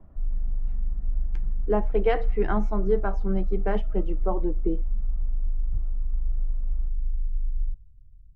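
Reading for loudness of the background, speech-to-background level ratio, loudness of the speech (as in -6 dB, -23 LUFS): -33.0 LUFS, 4.5 dB, -28.5 LUFS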